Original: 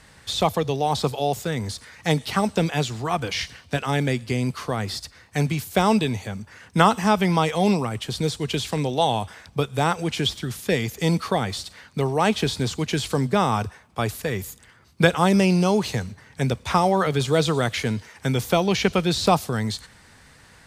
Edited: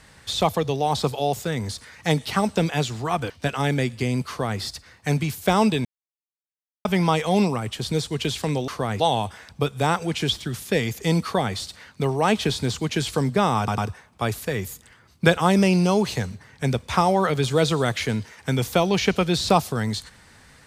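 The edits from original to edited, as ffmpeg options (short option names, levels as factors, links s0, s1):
-filter_complex "[0:a]asplit=8[s0][s1][s2][s3][s4][s5][s6][s7];[s0]atrim=end=3.302[s8];[s1]atrim=start=3.588:end=6.14,asetpts=PTS-STARTPTS,afade=t=out:st=2.548:d=0.004:c=hsin[s9];[s2]atrim=start=6.14:end=7.14,asetpts=PTS-STARTPTS,volume=0[s10];[s3]atrim=start=7.14:end=8.972,asetpts=PTS-STARTPTS,afade=t=in:d=0.004:c=hsin[s11];[s4]atrim=start=4.568:end=4.892[s12];[s5]atrim=start=8.968:end=13.652[s13];[s6]atrim=start=13.548:end=13.652[s14];[s7]atrim=start=13.548[s15];[s9][s10][s11]concat=n=3:v=0:a=1[s16];[s8][s16]acrossfade=d=0.004:c1=hsin:c2=hsin[s17];[s17][s12]acrossfade=d=0.004:c1=hsin:c2=hsin[s18];[s18][s13]acrossfade=d=0.004:c1=hsin:c2=hsin[s19];[s19][s14]acrossfade=d=0.004:c1=hsin:c2=hsin[s20];[s20][s15]acrossfade=d=0.004:c1=hsin:c2=hsin"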